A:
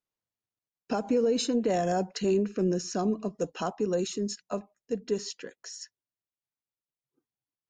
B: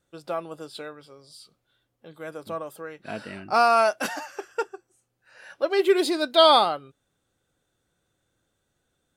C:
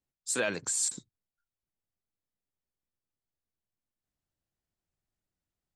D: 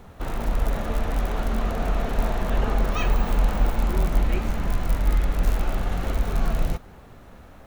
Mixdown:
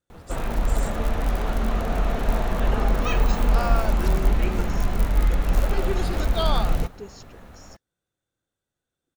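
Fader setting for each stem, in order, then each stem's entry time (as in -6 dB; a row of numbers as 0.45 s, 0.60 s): -10.0 dB, -11.0 dB, -13.5 dB, +1.0 dB; 1.90 s, 0.00 s, 0.00 s, 0.10 s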